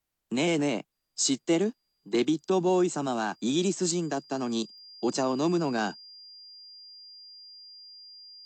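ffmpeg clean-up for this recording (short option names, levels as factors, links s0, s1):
-af "adeclick=t=4,bandreject=f=4800:w=30"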